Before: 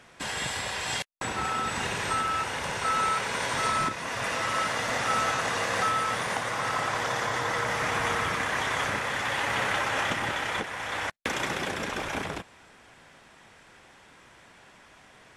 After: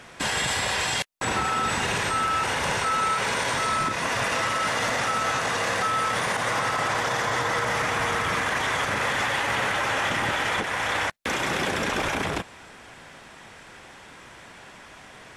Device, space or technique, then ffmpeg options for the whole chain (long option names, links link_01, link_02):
stacked limiters: -af "alimiter=limit=-20.5dB:level=0:latency=1:release=62,alimiter=level_in=0.5dB:limit=-24dB:level=0:latency=1:release=26,volume=-0.5dB,volume=8dB"